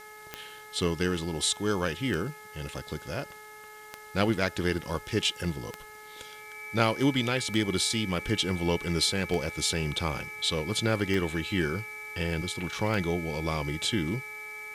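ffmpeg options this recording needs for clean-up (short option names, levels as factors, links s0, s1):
-af "adeclick=t=4,bandreject=f=426:t=h:w=4,bandreject=f=852:t=h:w=4,bandreject=f=1278:t=h:w=4,bandreject=f=1704:t=h:w=4,bandreject=f=2130:t=h:w=4,bandreject=f=2300:w=30,afwtdn=0.002"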